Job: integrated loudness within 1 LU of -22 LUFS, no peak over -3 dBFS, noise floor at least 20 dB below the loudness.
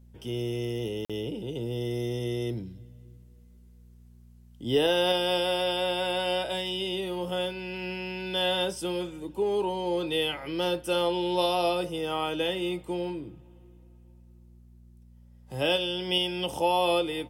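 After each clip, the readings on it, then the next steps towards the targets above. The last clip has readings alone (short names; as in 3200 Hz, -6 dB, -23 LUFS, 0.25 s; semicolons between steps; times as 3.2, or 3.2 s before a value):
dropouts 1; longest dropout 46 ms; hum 60 Hz; harmonics up to 240 Hz; hum level -49 dBFS; loudness -28.5 LUFS; peak -14.0 dBFS; loudness target -22.0 LUFS
-> interpolate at 1.05, 46 ms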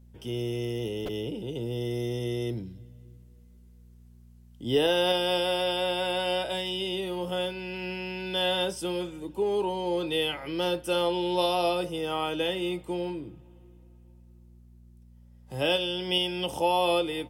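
dropouts 0; hum 60 Hz; harmonics up to 240 Hz; hum level -49 dBFS
-> de-hum 60 Hz, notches 4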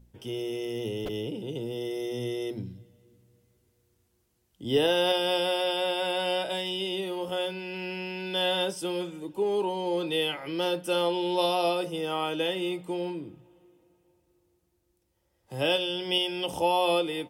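hum none; loudness -28.5 LUFS; peak -13.5 dBFS; loudness target -22.0 LUFS
-> gain +6.5 dB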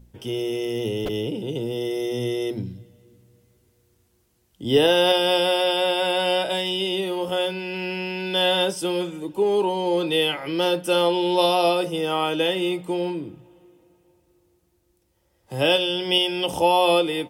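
loudness -22.5 LUFS; peak -7.0 dBFS; noise floor -66 dBFS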